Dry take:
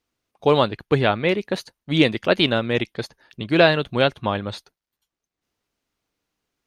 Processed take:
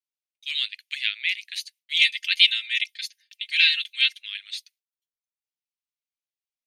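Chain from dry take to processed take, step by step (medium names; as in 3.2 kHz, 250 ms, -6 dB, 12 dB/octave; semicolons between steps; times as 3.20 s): steep high-pass 2.1 kHz 48 dB/octave; gate with hold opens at -51 dBFS; 1.96–4.19 s: comb 3.8 ms, depth 86%; trim +3.5 dB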